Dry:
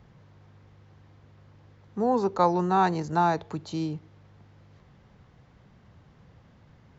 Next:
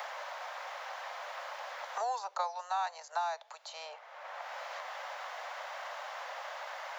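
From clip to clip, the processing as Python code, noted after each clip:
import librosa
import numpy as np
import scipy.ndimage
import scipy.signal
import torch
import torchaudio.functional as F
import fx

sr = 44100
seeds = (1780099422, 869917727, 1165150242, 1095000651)

y = scipy.signal.sosfilt(scipy.signal.butter(12, 570.0, 'highpass', fs=sr, output='sos'), x)
y = fx.high_shelf(y, sr, hz=6000.0, db=6.5)
y = fx.band_squash(y, sr, depth_pct=100)
y = F.gain(torch.from_numpy(y), -2.5).numpy()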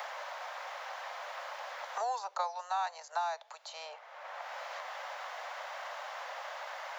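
y = x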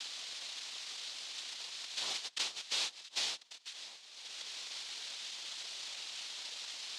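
y = fx.noise_vocoder(x, sr, seeds[0], bands=2)
y = fx.bandpass_q(y, sr, hz=3800.0, q=1.9)
y = F.gain(torch.from_numpy(y), 5.0).numpy()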